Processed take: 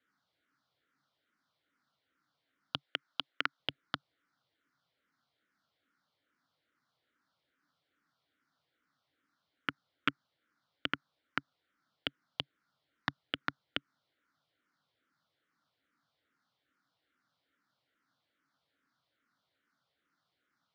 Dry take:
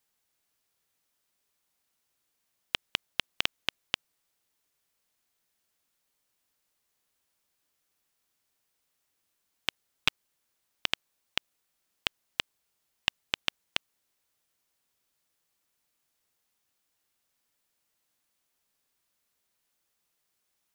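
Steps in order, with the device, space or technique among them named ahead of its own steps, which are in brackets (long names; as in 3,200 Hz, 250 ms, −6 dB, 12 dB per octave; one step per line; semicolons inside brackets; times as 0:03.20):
0:02.81–0:03.60: meter weighting curve A
barber-pole phaser into a guitar amplifier (frequency shifter mixed with the dry sound −2.4 Hz; soft clipping −18.5 dBFS, distortion −9 dB; loudspeaker in its box 99–4,100 Hz, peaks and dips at 140 Hz +6 dB, 280 Hz +8 dB, 400 Hz −5 dB, 880 Hz −4 dB, 1,400 Hz +9 dB, 2,600 Hz −9 dB)
level +5.5 dB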